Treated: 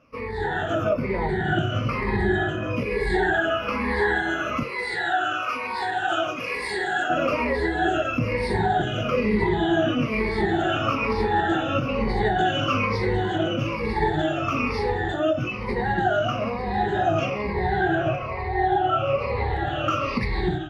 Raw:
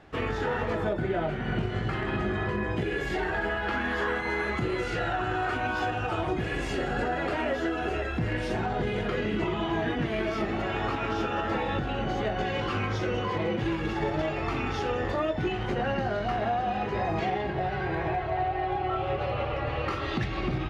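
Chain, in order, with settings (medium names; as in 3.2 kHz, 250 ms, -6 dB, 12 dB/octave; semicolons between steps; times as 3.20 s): drifting ripple filter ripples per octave 0.9, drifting -1.1 Hz, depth 23 dB; 4.63–7.10 s: high-pass 1 kHz 6 dB/octave; level rider gain up to 15 dB; flange 0.99 Hz, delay 7.4 ms, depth 4.8 ms, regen -74%; trim -5.5 dB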